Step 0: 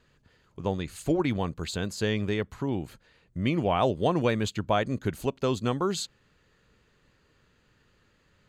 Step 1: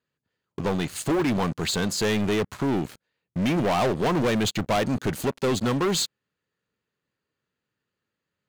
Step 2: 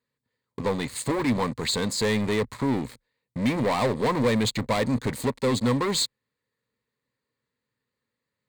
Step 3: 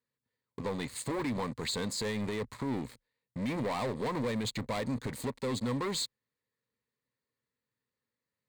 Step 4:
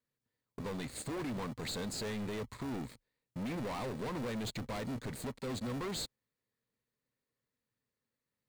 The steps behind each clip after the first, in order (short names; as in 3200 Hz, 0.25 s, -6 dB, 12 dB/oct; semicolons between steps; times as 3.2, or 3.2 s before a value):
HPF 120 Hz 12 dB/oct; sample leveller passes 5; gain -7.5 dB
ripple EQ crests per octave 0.98, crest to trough 8 dB; gain -1.5 dB
limiter -19.5 dBFS, peak gain reduction 5 dB; gain -7 dB
in parallel at -7 dB: sample-and-hold 42×; on the sum: soft clip -33 dBFS, distortion -11 dB; gain -2 dB